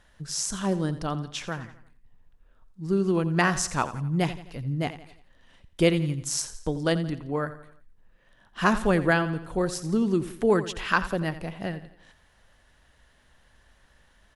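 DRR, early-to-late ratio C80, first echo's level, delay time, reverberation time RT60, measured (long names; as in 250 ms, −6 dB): no reverb audible, no reverb audible, −14.0 dB, 86 ms, no reverb audible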